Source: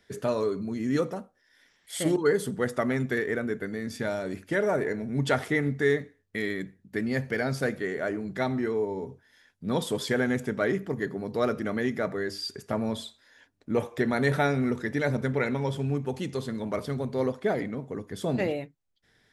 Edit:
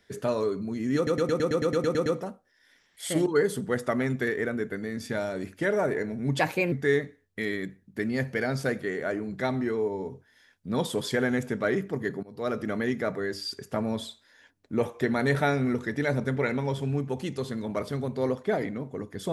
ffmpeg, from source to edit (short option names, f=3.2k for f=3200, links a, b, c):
-filter_complex "[0:a]asplit=14[a][b][c][d][e][f][g][h][i][j][k][l][m][n];[a]atrim=end=1.072[o];[b]atrim=start=0.958:end=1.072[p];[c]atrim=start=0.958:end=1.072[q];[d]atrim=start=0.958:end=1.072[r];[e]atrim=start=0.958:end=1.072[s];[f]atrim=start=0.958:end=1.072[t];[g]atrim=start=0.958:end=1.072[u];[h]atrim=start=0.958:end=1.072[v];[i]atrim=start=0.958:end=1.072[w];[j]atrim=start=0.958:end=1.072[x];[k]atrim=start=0.958:end=5.294[y];[l]atrim=start=5.29:end=5.69,asetpts=PTS-STARTPTS,asetrate=53361,aresample=44100[z];[m]atrim=start=5.686:end=11.2,asetpts=PTS-STARTPTS,afade=t=out:st=5.51:d=0.004:c=hsin:silence=0.1[aa];[n]atrim=start=11.2,asetpts=PTS-STARTPTS,afade=t=in:d=0.4:silence=0.1[ab];[o][p]acrossfade=d=0.004:c1=hsin:c2=hsin[ac];[ac][q]acrossfade=d=0.004:c1=hsin:c2=hsin[ad];[ad][r]acrossfade=d=0.004:c1=hsin:c2=hsin[ae];[ae][s]acrossfade=d=0.004:c1=hsin:c2=hsin[af];[af][t]acrossfade=d=0.004:c1=hsin:c2=hsin[ag];[ag][u]acrossfade=d=0.004:c1=hsin:c2=hsin[ah];[ah][v]acrossfade=d=0.004:c1=hsin:c2=hsin[ai];[ai][w]acrossfade=d=0.004:c1=hsin:c2=hsin[aj];[aj][x]acrossfade=d=0.004:c1=hsin:c2=hsin[ak];[ak][y]acrossfade=d=0.004:c1=hsin:c2=hsin[al];[al][z]acrossfade=d=0.004:c1=hsin:c2=hsin[am];[aa][ab]concat=n=2:v=0:a=1[an];[am][an]acrossfade=d=0.004:c1=hsin:c2=hsin"